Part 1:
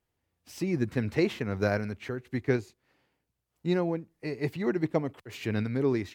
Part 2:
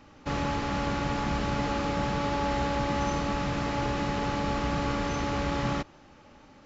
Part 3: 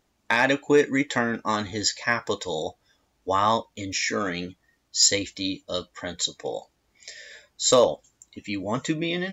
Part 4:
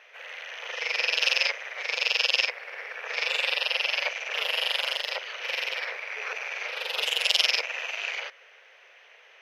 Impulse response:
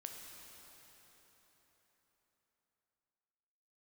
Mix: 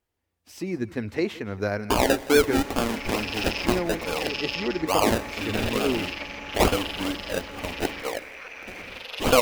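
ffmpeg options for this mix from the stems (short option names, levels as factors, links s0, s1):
-filter_complex "[0:a]volume=1.06,asplit=2[s0][s1];[s1]volume=0.106[s2];[1:a]adelay=2200,volume=0.266[s3];[2:a]acrusher=samples=32:mix=1:aa=0.000001:lfo=1:lforange=19.2:lforate=2.3,adelay=1600,volume=0.841,asplit=3[s4][s5][s6];[s5]volume=0.316[s7];[s6]volume=0.0891[s8];[3:a]adelay=2150,volume=0.398,asplit=2[s9][s10];[s10]volume=0.501[s11];[4:a]atrim=start_sample=2205[s12];[s7][s12]afir=irnorm=-1:irlink=0[s13];[s2][s8][s11]amix=inputs=3:normalize=0,aecho=0:1:170:1[s14];[s0][s3][s4][s9][s13][s14]amix=inputs=6:normalize=0,equalizer=f=140:w=4.1:g=-13.5"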